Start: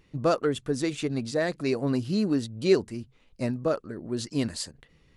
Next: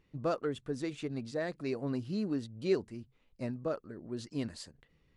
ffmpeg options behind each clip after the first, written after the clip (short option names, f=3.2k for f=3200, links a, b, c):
-af "highshelf=f=5.4k:g=-8.5,volume=-8.5dB"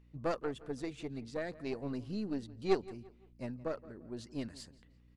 -filter_complex "[0:a]aeval=exprs='0.133*(cos(1*acos(clip(val(0)/0.133,-1,1)))-cos(1*PI/2))+0.0376*(cos(2*acos(clip(val(0)/0.133,-1,1)))-cos(2*PI/2))+0.0237*(cos(3*acos(clip(val(0)/0.133,-1,1)))-cos(3*PI/2))':c=same,aeval=exprs='val(0)+0.000631*(sin(2*PI*60*n/s)+sin(2*PI*2*60*n/s)/2+sin(2*PI*3*60*n/s)/3+sin(2*PI*4*60*n/s)/4+sin(2*PI*5*60*n/s)/5)':c=same,asplit=2[a][b];[b]adelay=171,lowpass=f=4.2k:p=1,volume=-19dB,asplit=2[c][d];[d]adelay=171,lowpass=f=4.2k:p=1,volume=0.37,asplit=2[e][f];[f]adelay=171,lowpass=f=4.2k:p=1,volume=0.37[g];[a][c][e][g]amix=inputs=4:normalize=0,volume=2.5dB"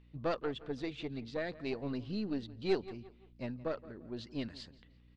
-af "lowpass=f=3.7k:t=q:w=2,asoftclip=type=tanh:threshold=-21.5dB,volume=1dB"